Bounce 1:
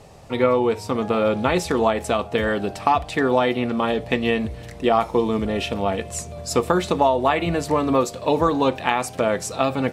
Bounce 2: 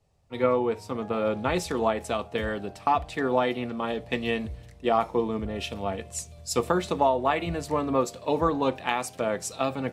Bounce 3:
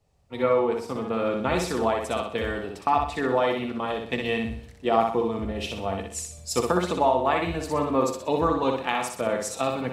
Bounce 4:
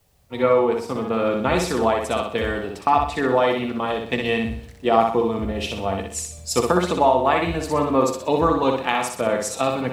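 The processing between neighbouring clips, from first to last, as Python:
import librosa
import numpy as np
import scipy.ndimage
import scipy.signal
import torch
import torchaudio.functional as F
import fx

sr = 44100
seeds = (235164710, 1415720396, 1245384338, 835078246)

y1 = fx.band_widen(x, sr, depth_pct=70)
y1 = F.gain(torch.from_numpy(y1), -6.0).numpy()
y2 = fx.echo_feedback(y1, sr, ms=62, feedback_pct=41, wet_db=-4.0)
y3 = fx.quant_dither(y2, sr, seeds[0], bits=12, dither='triangular')
y3 = F.gain(torch.from_numpy(y3), 4.5).numpy()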